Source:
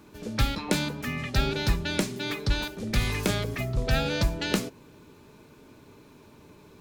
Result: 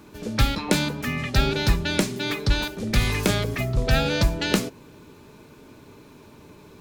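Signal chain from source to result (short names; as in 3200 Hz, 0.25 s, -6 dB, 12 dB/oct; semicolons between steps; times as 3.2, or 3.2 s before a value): gain +4.5 dB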